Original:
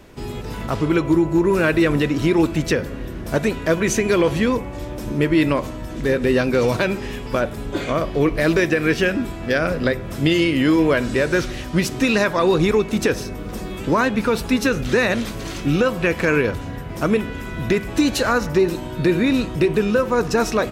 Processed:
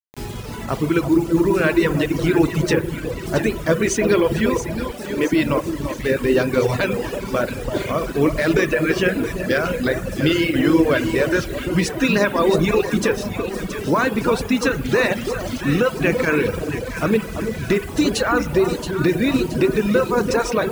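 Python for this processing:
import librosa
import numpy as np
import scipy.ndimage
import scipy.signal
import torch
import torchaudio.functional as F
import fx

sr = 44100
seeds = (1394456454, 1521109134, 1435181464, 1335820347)

y = scipy.signal.sosfilt(scipy.signal.butter(12, 11000.0, 'lowpass', fs=sr, output='sos'), x)
y = fx.rev_spring(y, sr, rt60_s=1.7, pass_ms=(49, 59), chirp_ms=80, drr_db=5.0)
y = fx.quant_dither(y, sr, seeds[0], bits=6, dither='none')
y = fx.highpass(y, sr, hz=210.0, slope=24, at=(4.91, 5.33))
y = fx.echo_alternate(y, sr, ms=337, hz=1200.0, feedback_pct=71, wet_db=-6)
y = fx.dereverb_blind(y, sr, rt60_s=1.2)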